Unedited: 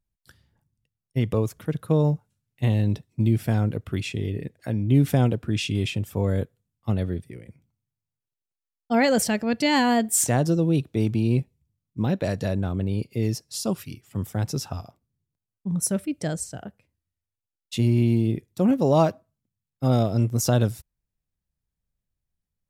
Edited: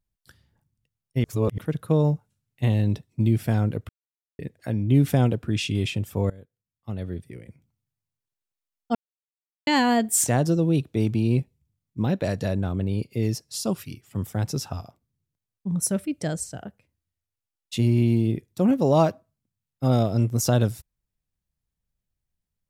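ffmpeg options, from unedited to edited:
-filter_complex "[0:a]asplit=8[s0][s1][s2][s3][s4][s5][s6][s7];[s0]atrim=end=1.242[s8];[s1]atrim=start=1.238:end=1.582,asetpts=PTS-STARTPTS,areverse[s9];[s2]atrim=start=1.578:end=3.89,asetpts=PTS-STARTPTS,afade=t=out:st=2.308:d=0.004:c=hsin[s10];[s3]atrim=start=3.89:end=4.39,asetpts=PTS-STARTPTS,volume=0[s11];[s4]atrim=start=4.39:end=6.3,asetpts=PTS-STARTPTS,afade=t=in:d=0.004:c=hsin,afade=t=out:st=1.906:d=0.004:c=hsin:silence=0.0891251[s12];[s5]atrim=start=6.3:end=8.95,asetpts=PTS-STARTPTS,afade=t=in:d=1.06:c=qua:silence=0.0891251,afade=t=out:st=2.646:d=0.004:c=hsin[s13];[s6]atrim=start=8.95:end=9.67,asetpts=PTS-STARTPTS,volume=0[s14];[s7]atrim=start=9.67,asetpts=PTS-STARTPTS,afade=t=in:d=0.004:c=hsin[s15];[s8][s9]acrossfade=d=0.004:c1=hsin:c2=hsin[s16];[s10][s11][s12][s13][s14][s15]concat=n=6:v=0:a=1[s17];[s16][s17]acrossfade=d=0.004:c1=hsin:c2=hsin"

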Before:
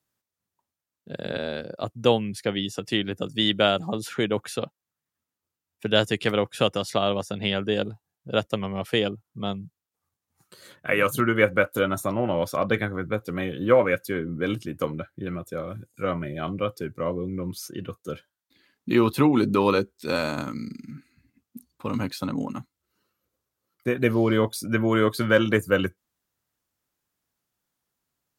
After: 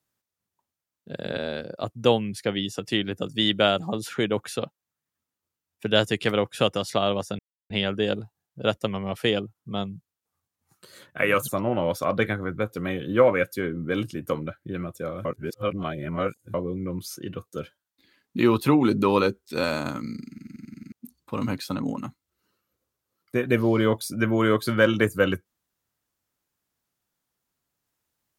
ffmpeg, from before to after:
-filter_complex "[0:a]asplit=12[s0][s1][s2][s3][s4][s5][s6][s7][s8][s9][s10][s11];[s0]atrim=end=7.39,asetpts=PTS-STARTPTS,afade=t=out:st=7.386:d=0.004:c=hsin,apad=pad_dur=0.31[s12];[s1]atrim=start=7.39:end=11.172,asetpts=PTS-STARTPTS,afade=t=in:d=0.004:c=hsin[s13];[s2]atrim=start=11.998:end=15.772[s14];[s3]atrim=start=15.768:end=17.062,asetpts=PTS-STARTPTS,areverse[s15];[s4]atrim=start=17.058:end=20.902[s16];[s5]atrim=start=20.808:end=20.902[s17];[s6]atrim=start=20.808:end=20.902[s18];[s7]atrim=start=20.808:end=20.902[s19];[s8]atrim=start=20.808:end=20.902[s20];[s9]atrim=start=20.808:end=20.902[s21];[s10]atrim=start=20.808:end=20.902[s22];[s11]atrim=start=21.438[s23];[s12][s13]concat=n=2:v=0:a=1[s24];[s24][s14]acrossfade=d=0.004:c1=hsin:c2=hsin[s25];[s25][s15]acrossfade=d=0.004:c1=hsin:c2=hsin[s26];[s26][s16]acrossfade=d=0.004:c1=hsin:c2=hsin[s27];[s27][s17]acrossfade=d=0.004:c1=hsin:c2=hsin[s28];[s28][s18]acrossfade=d=0.004:c1=hsin:c2=hsin[s29];[s29][s19]acrossfade=d=0.004:c1=hsin:c2=hsin[s30];[s30][s20]acrossfade=d=0.004:c1=hsin:c2=hsin[s31];[s31][s21]acrossfade=d=0.004:c1=hsin:c2=hsin[s32];[s32][s22]acrossfade=d=0.004:c1=hsin:c2=hsin[s33];[s33][s23]acrossfade=d=0.004:c1=hsin:c2=hsin"

